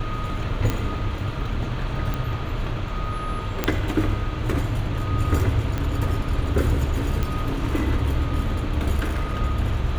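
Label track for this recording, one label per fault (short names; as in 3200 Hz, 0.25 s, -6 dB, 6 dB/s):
0.700000	0.700000	pop -10 dBFS
2.140000	2.140000	pop -14 dBFS
3.640000	3.640000	pop -6 dBFS
5.780000	5.780000	pop -13 dBFS
7.230000	7.230000	pop -12 dBFS
8.990000	9.410000	clipped -20 dBFS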